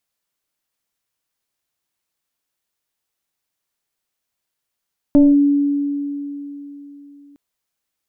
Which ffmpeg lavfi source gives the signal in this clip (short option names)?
-f lavfi -i "aevalsrc='0.501*pow(10,-3*t/3.53)*sin(2*PI*285*t+0.54*clip(1-t/0.21,0,1)*sin(2*PI*1.04*285*t))':d=2.21:s=44100"